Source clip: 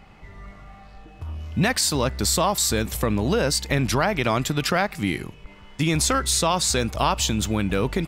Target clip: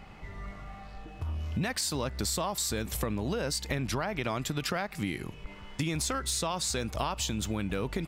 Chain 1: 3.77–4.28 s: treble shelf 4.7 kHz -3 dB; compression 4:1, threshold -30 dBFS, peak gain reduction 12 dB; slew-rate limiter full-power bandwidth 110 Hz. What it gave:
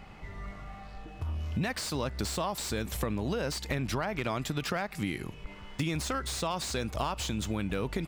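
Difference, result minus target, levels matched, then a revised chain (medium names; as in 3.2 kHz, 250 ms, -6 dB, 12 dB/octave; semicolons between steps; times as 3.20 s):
slew-rate limiter: distortion +21 dB
3.77–4.28 s: treble shelf 4.7 kHz -3 dB; compression 4:1, threshold -30 dBFS, peak gain reduction 12 dB; slew-rate limiter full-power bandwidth 421.5 Hz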